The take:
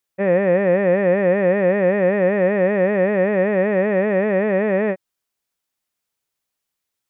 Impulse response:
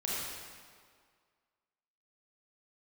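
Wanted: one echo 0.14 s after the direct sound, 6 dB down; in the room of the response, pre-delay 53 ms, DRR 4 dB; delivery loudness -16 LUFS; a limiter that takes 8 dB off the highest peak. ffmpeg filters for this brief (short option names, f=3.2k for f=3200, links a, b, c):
-filter_complex "[0:a]alimiter=limit=-15dB:level=0:latency=1,aecho=1:1:140:0.501,asplit=2[a][b];[1:a]atrim=start_sample=2205,adelay=53[c];[b][c]afir=irnorm=-1:irlink=0,volume=-9.5dB[d];[a][d]amix=inputs=2:normalize=0,volume=5dB"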